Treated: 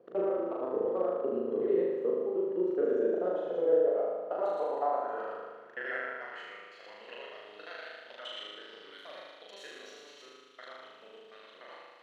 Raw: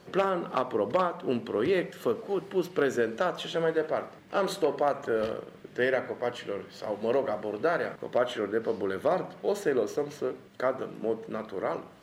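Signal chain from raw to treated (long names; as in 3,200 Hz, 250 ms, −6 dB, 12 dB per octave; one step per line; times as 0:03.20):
reversed piece by piece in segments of 73 ms
band-pass filter sweep 440 Hz → 3,300 Hz, 0:03.66–0:07.50
flutter between parallel walls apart 6.6 metres, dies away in 1.4 s
level −3 dB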